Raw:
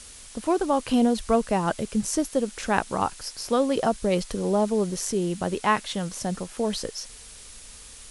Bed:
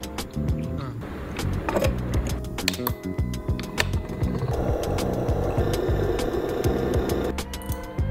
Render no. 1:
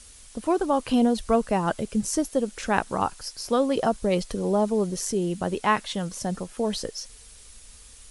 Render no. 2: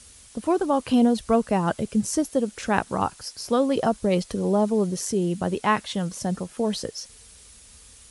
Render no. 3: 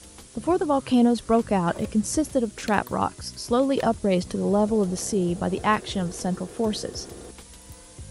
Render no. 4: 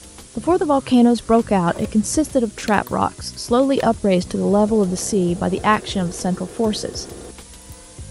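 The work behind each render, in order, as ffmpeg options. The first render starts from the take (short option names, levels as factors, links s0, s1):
-af "afftdn=nr=6:nf=-45"
-af "highpass=77,lowshelf=f=180:g=6.5"
-filter_complex "[1:a]volume=0.15[s0];[0:a][s0]amix=inputs=2:normalize=0"
-af "volume=1.88,alimiter=limit=0.794:level=0:latency=1"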